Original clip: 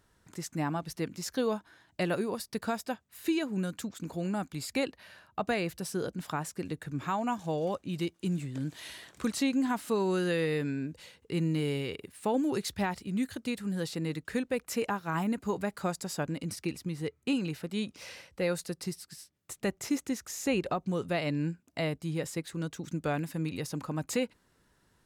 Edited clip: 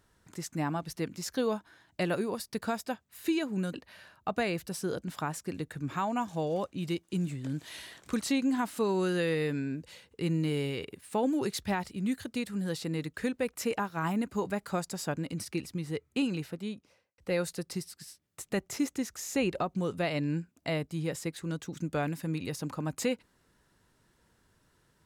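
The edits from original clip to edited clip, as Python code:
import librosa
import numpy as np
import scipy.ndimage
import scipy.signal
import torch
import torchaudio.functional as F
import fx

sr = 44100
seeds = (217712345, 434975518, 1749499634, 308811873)

y = fx.studio_fade_out(x, sr, start_s=17.45, length_s=0.84)
y = fx.edit(y, sr, fx.cut(start_s=3.74, length_s=1.11), tone=tone)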